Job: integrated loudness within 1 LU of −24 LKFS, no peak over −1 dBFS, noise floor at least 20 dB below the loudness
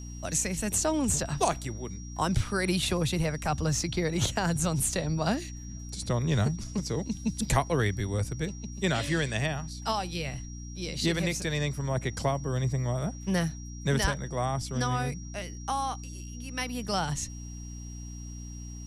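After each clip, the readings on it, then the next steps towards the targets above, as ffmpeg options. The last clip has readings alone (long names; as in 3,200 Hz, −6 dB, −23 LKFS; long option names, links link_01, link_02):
mains hum 60 Hz; hum harmonics up to 300 Hz; level of the hum −39 dBFS; interfering tone 5,700 Hz; level of the tone −48 dBFS; integrated loudness −30.0 LKFS; sample peak −11.5 dBFS; target loudness −24.0 LKFS
→ -af "bandreject=frequency=60:width_type=h:width=4,bandreject=frequency=120:width_type=h:width=4,bandreject=frequency=180:width_type=h:width=4,bandreject=frequency=240:width_type=h:width=4,bandreject=frequency=300:width_type=h:width=4"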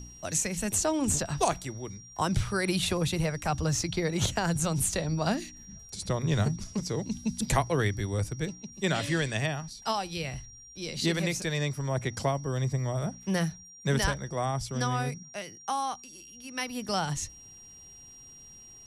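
mains hum none found; interfering tone 5,700 Hz; level of the tone −48 dBFS
→ -af "bandreject=frequency=5700:width=30"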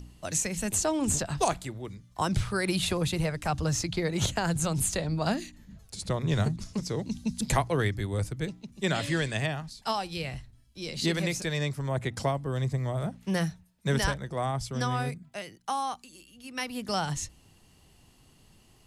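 interfering tone none found; integrated loudness −30.0 LKFS; sample peak −12.0 dBFS; target loudness −24.0 LKFS
→ -af "volume=6dB"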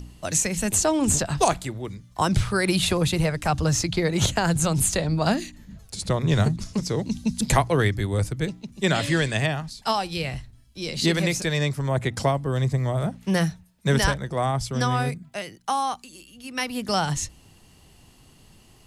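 integrated loudness −24.0 LKFS; sample peak −6.0 dBFS; background noise floor −54 dBFS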